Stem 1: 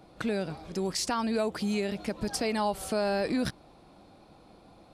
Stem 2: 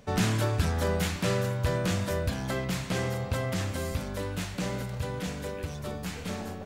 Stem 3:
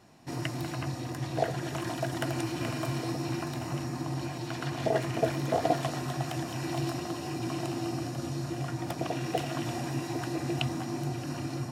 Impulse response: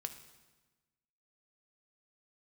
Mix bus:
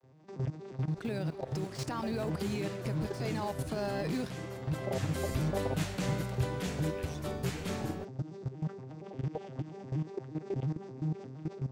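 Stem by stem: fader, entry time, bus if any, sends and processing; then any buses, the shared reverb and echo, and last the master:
0.0 dB, 0.80 s, bus A, no send, floating-point word with a short mantissa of 4 bits; slew-rate limiting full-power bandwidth 88 Hz
0:02.11 −20 dB → 0:02.35 −11.5 dB → 0:04.56 −11.5 dB → 0:05.28 −2 dB, 1.40 s, no bus, no send, brickwall limiter −22.5 dBFS, peak gain reduction 7 dB
+3.0 dB, 0.00 s, bus A, no send, vocoder with an arpeggio as carrier minor triad, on C3, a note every 117 ms; brickwall limiter −26.5 dBFS, peak gain reduction 7.5 dB; parametric band 470 Hz +7.5 dB 0.29 octaves
bus A: 0.0 dB, output level in coarse steps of 15 dB; brickwall limiter −26.5 dBFS, peak gain reduction 7.5 dB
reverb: not used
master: no processing

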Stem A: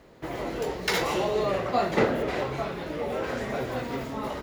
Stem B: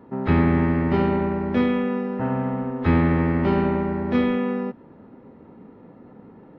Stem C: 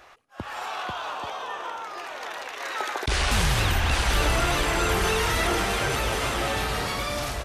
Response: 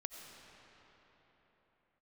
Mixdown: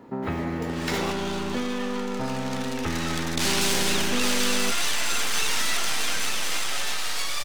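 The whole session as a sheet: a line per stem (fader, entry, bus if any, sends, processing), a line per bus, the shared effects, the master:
−4.5 dB, 0.00 s, muted 0:01.12–0:03.71, no send, no processing
+1.5 dB, 0.00 s, no send, downward compressor, threshold −26 dBFS, peak gain reduction 12 dB
−4.0 dB, 0.30 s, send −8 dB, meter weighting curve ITU-R 468; half-wave rectification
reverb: on, pre-delay 50 ms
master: low-shelf EQ 240 Hz −4.5 dB

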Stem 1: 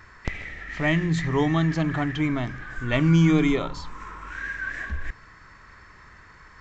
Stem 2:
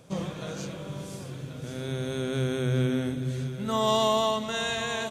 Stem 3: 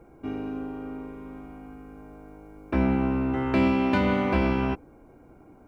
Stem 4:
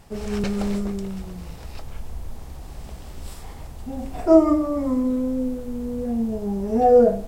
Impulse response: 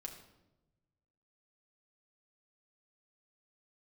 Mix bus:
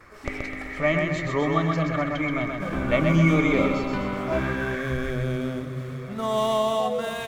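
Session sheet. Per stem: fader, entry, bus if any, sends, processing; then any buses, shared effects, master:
−4.5 dB, 0.00 s, no send, echo send −4 dB, noise gate with hold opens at −40 dBFS; hollow resonant body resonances 570/1,200/2,200 Hz, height 14 dB, ringing for 35 ms
−1.5 dB, 2.50 s, no send, echo send −14.5 dB, running median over 9 samples; hollow resonant body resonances 610/1,200/2,300 Hz, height 9 dB
−6.0 dB, 0.00 s, no send, no echo send, no processing
−10.0 dB, 0.00 s, no send, no echo send, high-pass filter 600 Hz; reverb reduction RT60 1.7 s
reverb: not used
echo: repeating echo 128 ms, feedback 52%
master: no processing

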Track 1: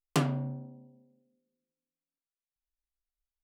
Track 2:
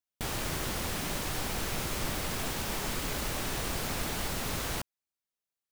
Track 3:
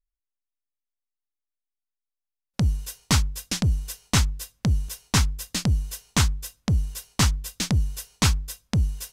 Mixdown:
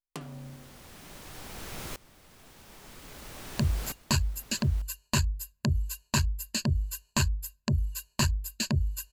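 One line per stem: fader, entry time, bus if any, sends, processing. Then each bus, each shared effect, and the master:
−7.0 dB, 0.00 s, no send, downward compressor 5 to 1, threshold −31 dBFS, peak gain reduction 9 dB
−4.0 dB, 0.00 s, no send, tremolo with a ramp in dB swelling 0.51 Hz, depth 22 dB
−4.0 dB, 1.00 s, no send, one-sided soft clipper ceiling −13.5 dBFS; reverb reduction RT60 1.4 s; EQ curve with evenly spaced ripples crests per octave 1.4, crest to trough 16 dB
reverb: not used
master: downward compressor 1.5 to 1, threshold −27 dBFS, peak gain reduction 3.5 dB

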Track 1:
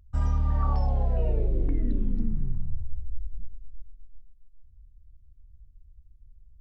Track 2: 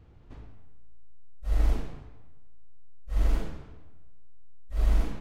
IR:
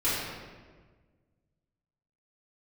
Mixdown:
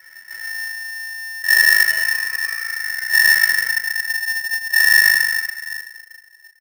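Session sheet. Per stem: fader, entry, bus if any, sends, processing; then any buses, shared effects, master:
−7.5 dB, 1.30 s, send −18 dB, no processing
0.0 dB, 0.00 s, send −9 dB, brickwall limiter −20 dBFS, peak gain reduction 7.5 dB; comb filter 2.4 ms, depth 60%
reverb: on, RT60 1.5 s, pre-delay 3 ms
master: ring modulator with a square carrier 1,800 Hz

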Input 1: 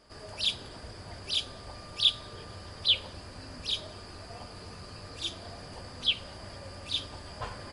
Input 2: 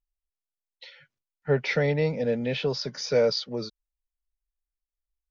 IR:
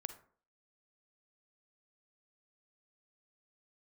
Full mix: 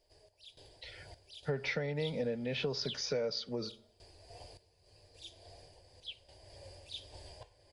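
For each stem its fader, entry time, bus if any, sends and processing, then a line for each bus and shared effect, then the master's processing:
−4.5 dB, 0.00 s, no send, phaser with its sweep stopped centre 530 Hz, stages 4; sample-and-hold tremolo, depth 90%
−1.0 dB, 0.00 s, send −5 dB, no processing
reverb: on, RT60 0.50 s, pre-delay 38 ms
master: amplitude tremolo 1.8 Hz, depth 47%; downward compressor 8 to 1, threshold −32 dBFS, peak gain reduction 14.5 dB

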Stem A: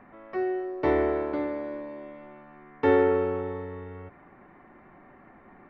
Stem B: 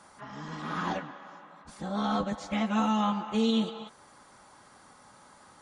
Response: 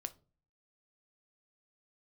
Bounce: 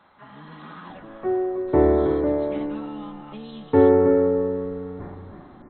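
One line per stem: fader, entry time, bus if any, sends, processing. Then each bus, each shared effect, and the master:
−2.5 dB, 0.90 s, send −3.5 dB, echo send −3.5 dB, low-pass filter 1,300 Hz 12 dB per octave; low-shelf EQ 390 Hz +10 dB; level that may fall only so fast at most 52 dB per second
−1.5 dB, 0.00 s, no send, no echo send, downward compressor 6 to 1, threshold −36 dBFS, peak gain reduction 13 dB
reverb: on, RT60 0.35 s, pre-delay 7 ms
echo: single-tap delay 321 ms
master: linear-phase brick-wall low-pass 4,200 Hz

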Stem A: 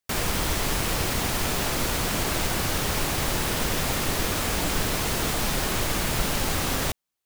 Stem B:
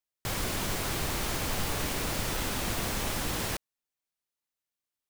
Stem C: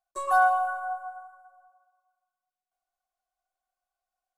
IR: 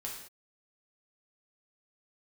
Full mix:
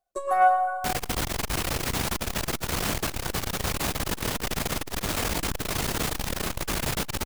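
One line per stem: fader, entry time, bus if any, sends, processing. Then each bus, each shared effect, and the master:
+0.5 dB, 0.75 s, send −23.5 dB, no processing
−4.5 dB, 1.70 s, no send, no processing
+1.5 dB, 0.00 s, no send, low shelf with overshoot 710 Hz +8 dB, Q 1.5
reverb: on, pre-delay 3 ms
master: saturating transformer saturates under 340 Hz

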